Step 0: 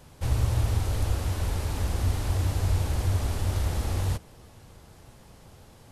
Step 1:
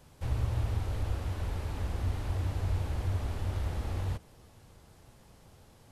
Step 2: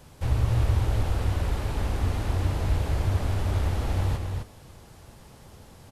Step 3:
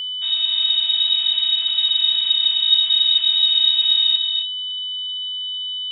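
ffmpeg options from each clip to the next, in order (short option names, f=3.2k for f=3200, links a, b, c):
-filter_complex "[0:a]acrossover=split=3700[a][b];[b]acompressor=threshold=-51dB:ratio=4:attack=1:release=60[c];[a][c]amix=inputs=2:normalize=0,volume=-6dB"
-af "aecho=1:1:258:0.562,volume=7dB"
-af "asubboost=boost=4:cutoff=100,lowpass=f=3.2k:t=q:w=0.5098,lowpass=f=3.2k:t=q:w=0.6013,lowpass=f=3.2k:t=q:w=0.9,lowpass=f=3.2k:t=q:w=2.563,afreqshift=-3800,aeval=exprs='val(0)+0.0631*sin(2*PI*3000*n/s)':c=same"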